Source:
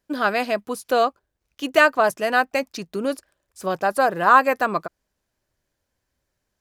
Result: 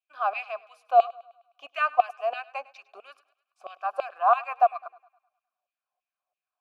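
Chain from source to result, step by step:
mains-hum notches 60/120/180/240/300/360/420/480 Hz
auto-filter high-pass saw down 3 Hz 620–2,800 Hz
log-companded quantiser 8 bits
formant filter a
feedback echo with a high-pass in the loop 103 ms, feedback 52%, high-pass 440 Hz, level −20 dB

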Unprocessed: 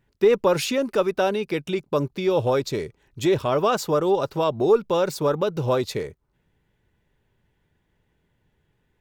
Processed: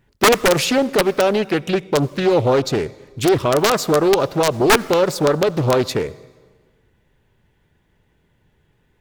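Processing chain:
in parallel at +2 dB: brickwall limiter −16 dBFS, peak gain reduction 8.5 dB
on the sum: wrap-around overflow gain 6.5 dB
convolution reverb RT60 1.5 s, pre-delay 63 ms, DRR 20 dB
highs frequency-modulated by the lows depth 0.5 ms

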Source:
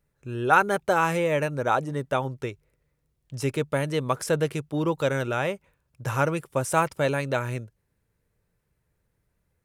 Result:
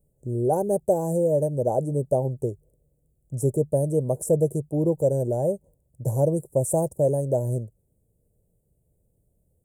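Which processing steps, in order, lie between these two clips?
elliptic band-stop filter 640–7,900 Hz, stop band 40 dB
dynamic equaliser 270 Hz, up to −6 dB, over −50 dBFS, Q 6.3
in parallel at +2.5 dB: speech leveller within 3 dB 0.5 s
on the sum: level −2.5 dB

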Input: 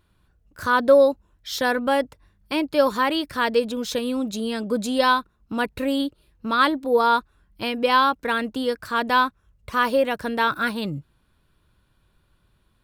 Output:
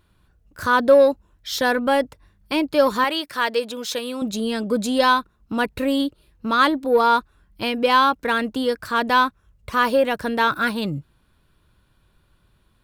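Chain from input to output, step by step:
0:03.04–0:04.22: high-pass filter 650 Hz 6 dB per octave
in parallel at −8 dB: soft clipping −18 dBFS, distortion −10 dB

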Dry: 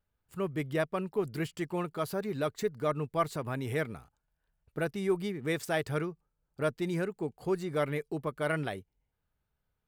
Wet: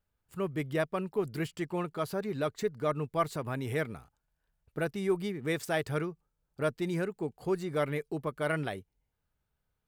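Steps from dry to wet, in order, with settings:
0:01.54–0:02.88: high-shelf EQ 10,000 Hz −5 dB

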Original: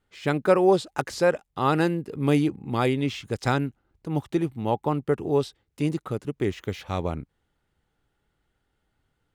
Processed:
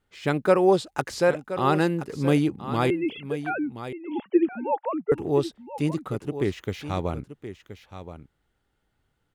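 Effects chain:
0:02.90–0:05.12: three sine waves on the formant tracks
single-tap delay 1,024 ms −12 dB

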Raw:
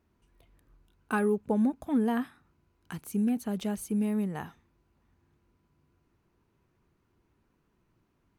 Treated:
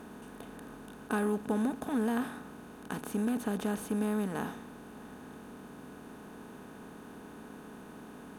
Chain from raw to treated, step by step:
compressor on every frequency bin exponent 0.4
level −7 dB

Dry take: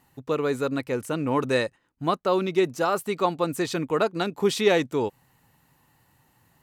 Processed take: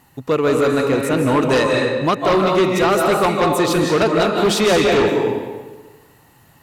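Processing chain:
comb and all-pass reverb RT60 1.3 s, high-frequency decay 0.8×, pre-delay 120 ms, DRR 1 dB
harmonic generator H 5 −8 dB, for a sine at −8 dBFS

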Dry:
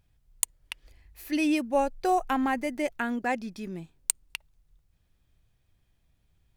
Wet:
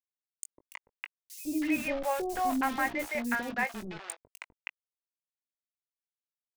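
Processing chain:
Butterworth low-pass 9,900 Hz 96 dB per octave
high shelf with overshoot 2,900 Hz −9.5 dB, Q 3
mains-hum notches 50/100/150/200/250/300/350 Hz
bit reduction 6 bits
double-tracking delay 20 ms −10.5 dB
three-band delay without the direct sound highs, lows, mids 150/320 ms, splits 530/4,600 Hz
level −3 dB

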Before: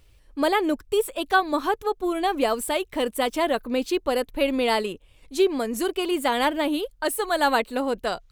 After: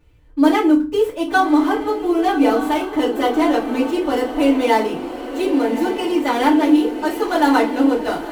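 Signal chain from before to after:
running median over 9 samples
feedback delay with all-pass diffusion 1,144 ms, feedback 56%, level −10 dB
feedback delay network reverb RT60 0.31 s, low-frequency decay 1.6×, high-frequency decay 0.8×, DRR −7.5 dB
level −4 dB

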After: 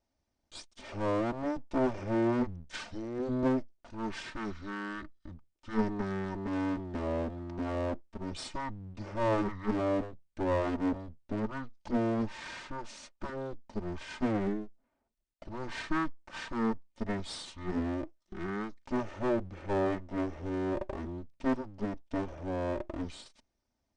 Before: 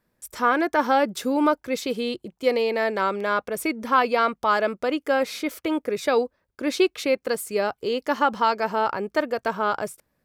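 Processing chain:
lower of the sound and its delayed copy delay 1.4 ms
wrong playback speed 78 rpm record played at 33 rpm
level −7.5 dB

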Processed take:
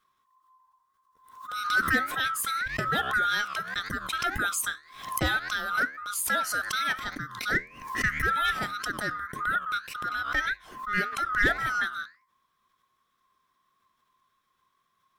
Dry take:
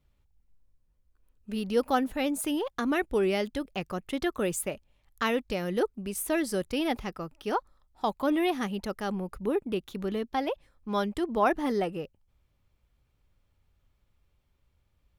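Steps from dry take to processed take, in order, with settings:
neighbouring bands swapped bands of 1,000 Hz
parametric band 1,100 Hz −9.5 dB 0.65 octaves
in parallel at −6 dB: wave folding −22 dBFS
on the sum: flanger 1.8 Hz, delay 9.6 ms, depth 6 ms, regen −79%
background raised ahead of every attack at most 84 dB per second
level +4.5 dB

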